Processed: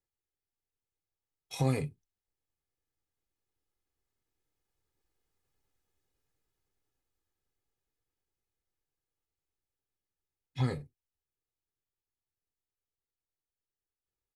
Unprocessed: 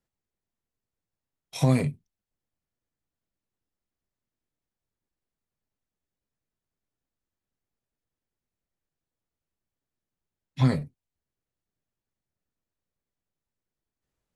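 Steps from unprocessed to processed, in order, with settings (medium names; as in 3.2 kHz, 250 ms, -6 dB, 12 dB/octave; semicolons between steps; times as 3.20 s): Doppler pass-by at 5.71 s, 5 m/s, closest 5.3 m; comb 2.4 ms, depth 52%; trim +5.5 dB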